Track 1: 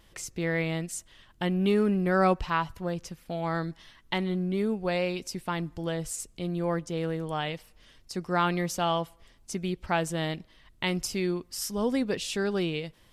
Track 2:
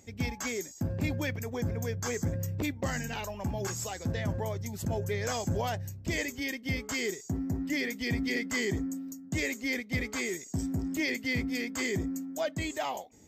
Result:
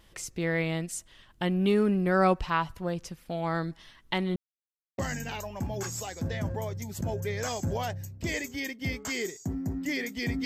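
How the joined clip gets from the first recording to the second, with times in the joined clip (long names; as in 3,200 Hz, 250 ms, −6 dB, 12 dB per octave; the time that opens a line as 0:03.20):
track 1
0:04.36–0:04.98: silence
0:04.98: continue with track 2 from 0:02.82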